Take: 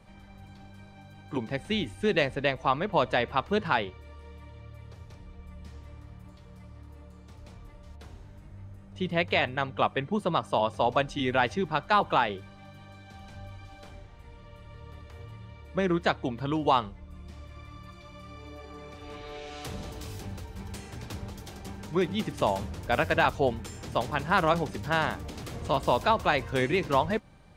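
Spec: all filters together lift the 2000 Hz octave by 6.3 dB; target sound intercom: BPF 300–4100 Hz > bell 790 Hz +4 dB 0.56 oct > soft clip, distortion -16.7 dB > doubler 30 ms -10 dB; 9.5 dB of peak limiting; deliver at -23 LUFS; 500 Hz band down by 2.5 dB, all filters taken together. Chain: bell 500 Hz -5 dB; bell 2000 Hz +8.5 dB; limiter -16 dBFS; BPF 300–4100 Hz; bell 790 Hz +4 dB 0.56 oct; soft clip -18.5 dBFS; doubler 30 ms -10 dB; gain +9 dB

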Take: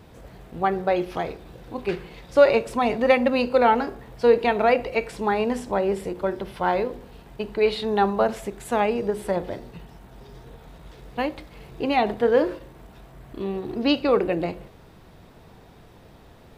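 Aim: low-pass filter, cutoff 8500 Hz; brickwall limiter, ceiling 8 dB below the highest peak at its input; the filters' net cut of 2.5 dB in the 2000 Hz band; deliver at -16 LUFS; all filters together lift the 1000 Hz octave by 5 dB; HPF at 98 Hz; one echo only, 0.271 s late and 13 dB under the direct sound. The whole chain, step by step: HPF 98 Hz; LPF 8500 Hz; bell 1000 Hz +8 dB; bell 2000 Hz -6 dB; limiter -9.5 dBFS; echo 0.271 s -13 dB; gain +7 dB

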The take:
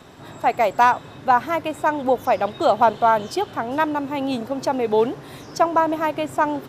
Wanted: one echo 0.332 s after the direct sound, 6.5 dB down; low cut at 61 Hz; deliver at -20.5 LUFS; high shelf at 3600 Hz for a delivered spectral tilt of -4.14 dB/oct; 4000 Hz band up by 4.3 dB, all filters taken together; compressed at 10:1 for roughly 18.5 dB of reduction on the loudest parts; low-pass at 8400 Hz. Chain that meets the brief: HPF 61 Hz; LPF 8400 Hz; high shelf 3600 Hz +3.5 dB; bell 4000 Hz +3.5 dB; compressor 10:1, threshold -30 dBFS; echo 0.332 s -6.5 dB; gain +13.5 dB

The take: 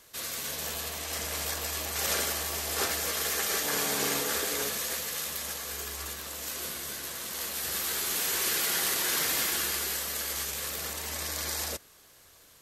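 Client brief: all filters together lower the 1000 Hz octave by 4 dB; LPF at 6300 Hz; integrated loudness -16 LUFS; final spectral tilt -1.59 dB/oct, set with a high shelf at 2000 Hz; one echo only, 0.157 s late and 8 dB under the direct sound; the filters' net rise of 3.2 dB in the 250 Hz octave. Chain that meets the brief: LPF 6300 Hz; bell 250 Hz +4.5 dB; bell 1000 Hz -8 dB; high shelf 2000 Hz +7.5 dB; echo 0.157 s -8 dB; gain +11.5 dB

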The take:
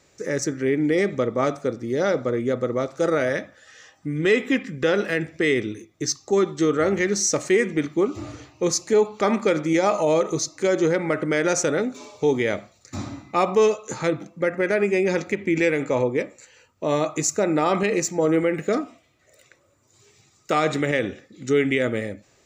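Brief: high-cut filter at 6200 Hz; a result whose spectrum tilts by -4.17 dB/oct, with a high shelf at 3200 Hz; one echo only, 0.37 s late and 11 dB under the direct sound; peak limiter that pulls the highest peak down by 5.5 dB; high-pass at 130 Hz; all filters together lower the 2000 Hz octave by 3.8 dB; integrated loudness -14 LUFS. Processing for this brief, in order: HPF 130 Hz; LPF 6200 Hz; bell 2000 Hz -7 dB; high shelf 3200 Hz +8 dB; limiter -13.5 dBFS; echo 0.37 s -11 dB; gain +10.5 dB

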